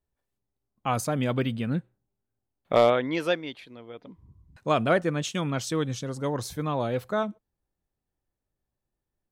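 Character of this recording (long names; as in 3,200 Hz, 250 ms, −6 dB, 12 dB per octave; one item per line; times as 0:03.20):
background noise floor −85 dBFS
spectral slope −5.0 dB per octave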